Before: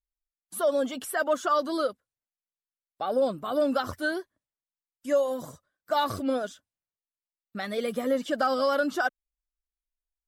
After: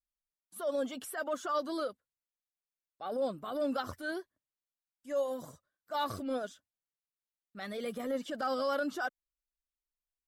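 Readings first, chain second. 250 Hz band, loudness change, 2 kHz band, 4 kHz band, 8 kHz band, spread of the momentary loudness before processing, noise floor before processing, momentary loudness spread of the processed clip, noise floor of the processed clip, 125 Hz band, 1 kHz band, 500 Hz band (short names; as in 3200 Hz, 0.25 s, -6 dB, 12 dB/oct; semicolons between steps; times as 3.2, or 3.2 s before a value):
-7.5 dB, -8.0 dB, -8.5 dB, -7.5 dB, -8.0 dB, 11 LU, under -85 dBFS, 10 LU, under -85 dBFS, -7.0 dB, -8.0 dB, -8.5 dB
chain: transient shaper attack -8 dB, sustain -1 dB; gain -6 dB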